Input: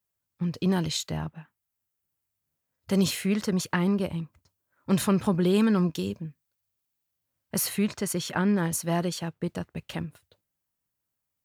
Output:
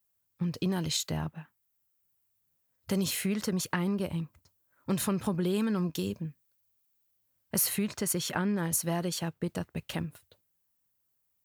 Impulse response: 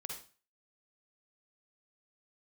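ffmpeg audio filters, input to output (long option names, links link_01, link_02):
-af "acompressor=threshold=-28dB:ratio=3,highshelf=frequency=9900:gain=9"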